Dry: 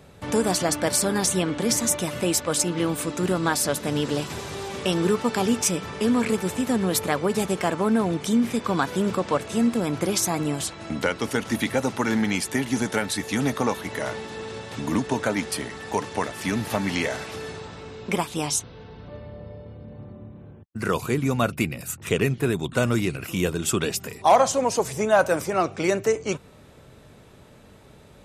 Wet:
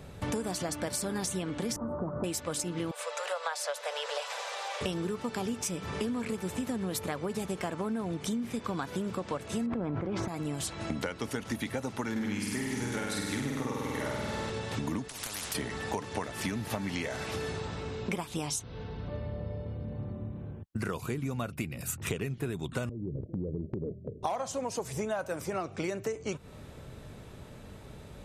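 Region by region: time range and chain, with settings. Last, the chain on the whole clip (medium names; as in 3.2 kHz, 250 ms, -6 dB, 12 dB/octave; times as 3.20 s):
1.76–2.24 s: elliptic low-pass 1.3 kHz, stop band 50 dB + hum notches 60/120/180/240/300/360/420/480 Hz + three bands compressed up and down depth 40%
2.91–4.81 s: steep high-pass 480 Hz 96 dB/octave + distance through air 50 m
9.66–10.28 s: low-pass 1.5 kHz + level flattener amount 100%
12.11–14.50 s: band-stop 700 Hz, Q 5.5 + flutter echo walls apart 8.4 m, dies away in 1.4 s
15.08–15.55 s: compression 12:1, threshold -27 dBFS + spectrum-flattening compressor 10:1
22.89–24.23 s: steep low-pass 620 Hz 96 dB/octave + gate -36 dBFS, range -7 dB + compression 3:1, threshold -32 dBFS
whole clip: bass shelf 130 Hz +7 dB; compression 12:1, threshold -30 dBFS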